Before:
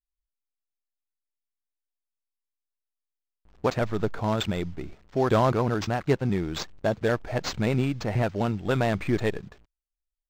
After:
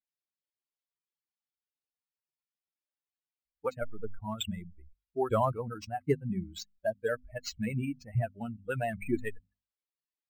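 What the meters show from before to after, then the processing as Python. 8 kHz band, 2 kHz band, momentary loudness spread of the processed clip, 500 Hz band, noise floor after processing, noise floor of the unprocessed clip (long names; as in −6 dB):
−6.0 dB, −8.0 dB, 10 LU, −7.5 dB, below −85 dBFS, below −85 dBFS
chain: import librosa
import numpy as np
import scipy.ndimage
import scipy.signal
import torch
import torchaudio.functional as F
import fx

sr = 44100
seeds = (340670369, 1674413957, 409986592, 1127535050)

y = fx.bin_expand(x, sr, power=3.0)
y = fx.high_shelf_res(y, sr, hz=7100.0, db=7.5, q=1.5)
y = fx.hum_notches(y, sr, base_hz=50, count=5)
y = np.interp(np.arange(len(y)), np.arange(len(y))[::2], y[::2])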